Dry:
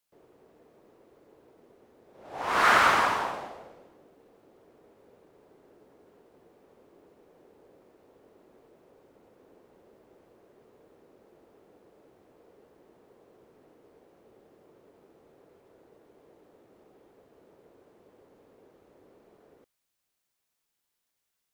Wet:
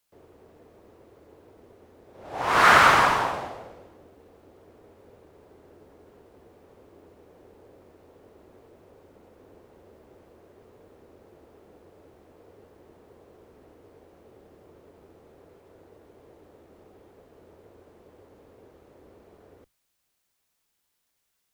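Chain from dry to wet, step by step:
sub-octave generator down 2 octaves, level −4 dB
level +5 dB

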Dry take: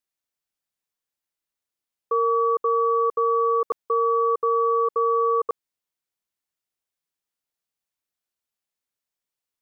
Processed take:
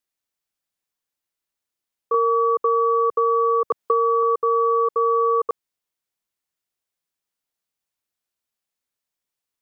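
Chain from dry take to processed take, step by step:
0:02.14–0:04.23: multiband upward and downward compressor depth 100%
level +2 dB

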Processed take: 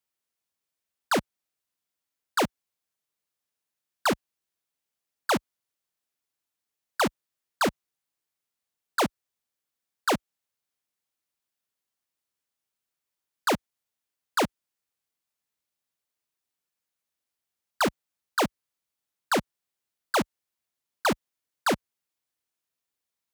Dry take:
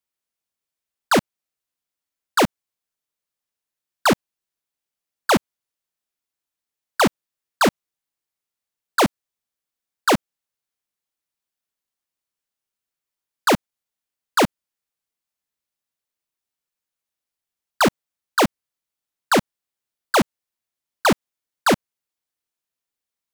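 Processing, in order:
high-pass filter 45 Hz 12 dB per octave
brickwall limiter −20 dBFS, peak gain reduction 10 dB

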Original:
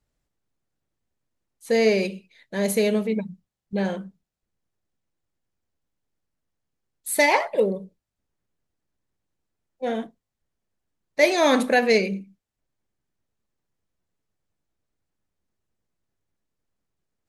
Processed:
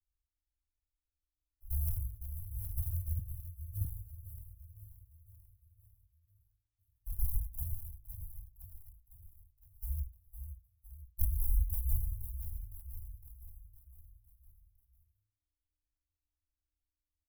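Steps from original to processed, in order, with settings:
in parallel at +0.5 dB: downward compressor, threshold −32 dBFS, peak gain reduction 18.5 dB
on the sum: sample-and-hold swept by an LFO 29×, swing 60% 1.1 Hz
high-shelf EQ 6,900 Hz −6.5 dB
on a send: repeating echo 509 ms, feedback 53%, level −9 dB
on the sum: ring modulation 300 Hz
inverse Chebyshev band-stop filter 180–5,900 Hz, stop band 50 dB
parametric band 350 Hz +13.5 dB 0.87 octaves
hum removal 54.43 Hz, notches 13
0:03.19–0:03.85: multiband upward and downward expander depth 100%
level +2 dB

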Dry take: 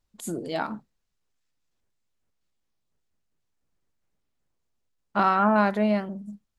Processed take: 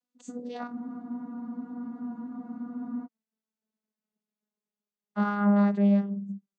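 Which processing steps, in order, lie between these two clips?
vocoder with a gliding carrier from B3, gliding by −4 semitones
high-shelf EQ 4,700 Hz +11 dB
frozen spectrum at 0:00.74, 2.31 s

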